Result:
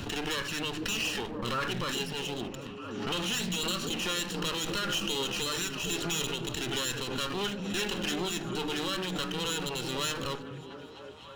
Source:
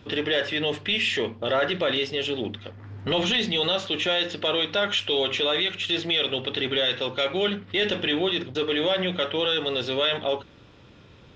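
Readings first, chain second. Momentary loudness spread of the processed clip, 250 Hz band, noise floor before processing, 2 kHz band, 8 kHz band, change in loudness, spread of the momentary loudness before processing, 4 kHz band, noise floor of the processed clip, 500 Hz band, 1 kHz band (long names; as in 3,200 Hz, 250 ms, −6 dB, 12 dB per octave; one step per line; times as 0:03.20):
7 LU, −4.5 dB, −51 dBFS, −7.0 dB, can't be measured, −7.5 dB, 4 LU, −8.0 dB, −45 dBFS, −11.0 dB, −4.0 dB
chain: lower of the sound and its delayed copy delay 0.7 ms
high-shelf EQ 6,500 Hz +6.5 dB
mains-hum notches 50/100/150 Hz
on a send: echo through a band-pass that steps 253 ms, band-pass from 150 Hz, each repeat 0.7 octaves, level −1 dB
on the sum: background raised ahead of every attack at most 36 dB per second
level −7 dB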